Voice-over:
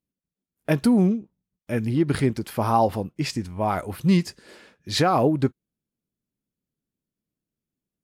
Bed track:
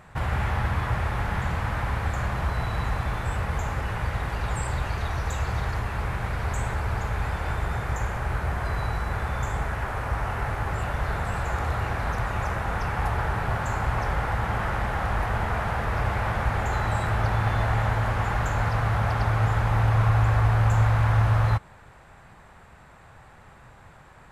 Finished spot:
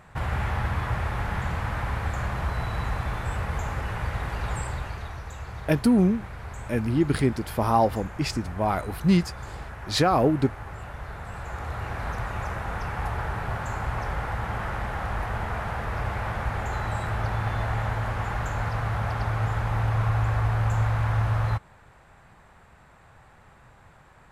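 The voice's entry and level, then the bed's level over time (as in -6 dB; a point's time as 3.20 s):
5.00 s, -1.0 dB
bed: 4.55 s -1.5 dB
5.26 s -10 dB
11.15 s -10 dB
12.04 s -3.5 dB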